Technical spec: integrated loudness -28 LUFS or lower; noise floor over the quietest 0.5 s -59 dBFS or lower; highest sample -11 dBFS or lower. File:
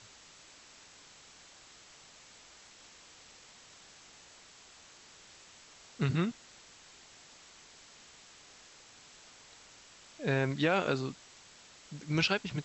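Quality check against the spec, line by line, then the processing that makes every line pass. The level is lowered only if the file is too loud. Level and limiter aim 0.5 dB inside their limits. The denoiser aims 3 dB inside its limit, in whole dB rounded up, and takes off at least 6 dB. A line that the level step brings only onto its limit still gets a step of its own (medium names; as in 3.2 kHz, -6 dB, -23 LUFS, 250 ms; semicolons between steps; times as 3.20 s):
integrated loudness -32.0 LUFS: pass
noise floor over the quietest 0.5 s -57 dBFS: fail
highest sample -14.5 dBFS: pass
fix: noise reduction 6 dB, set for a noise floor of -57 dBFS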